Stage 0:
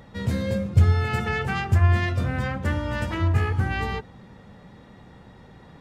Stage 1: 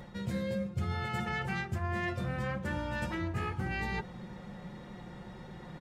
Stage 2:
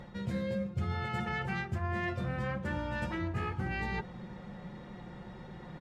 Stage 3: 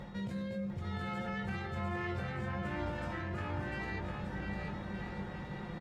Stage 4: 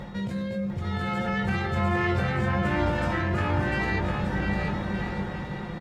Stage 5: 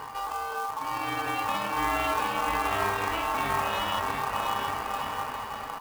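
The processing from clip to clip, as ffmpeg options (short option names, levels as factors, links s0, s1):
-af "aecho=1:1:5.6:0.58,areverse,acompressor=threshold=0.0224:ratio=4,areverse"
-af "highshelf=f=7100:g=-11"
-filter_complex "[0:a]alimiter=level_in=3.35:limit=0.0631:level=0:latency=1:release=38,volume=0.299,asplit=2[s0][s1];[s1]adelay=20,volume=0.473[s2];[s0][s2]amix=inputs=2:normalize=0,asplit=2[s3][s4];[s4]aecho=0:1:700|1225|1619|1914|2136:0.631|0.398|0.251|0.158|0.1[s5];[s3][s5]amix=inputs=2:normalize=0,volume=1.12"
-af "dynaudnorm=f=500:g=5:m=1.68,volume=2.51"
-af "aeval=exprs='val(0)+0.00794*(sin(2*PI*50*n/s)+sin(2*PI*2*50*n/s)/2+sin(2*PI*3*50*n/s)/3+sin(2*PI*4*50*n/s)/4+sin(2*PI*5*50*n/s)/5)':c=same,aeval=exprs='val(0)*sin(2*PI*990*n/s)':c=same,acrusher=bits=3:mode=log:mix=0:aa=0.000001"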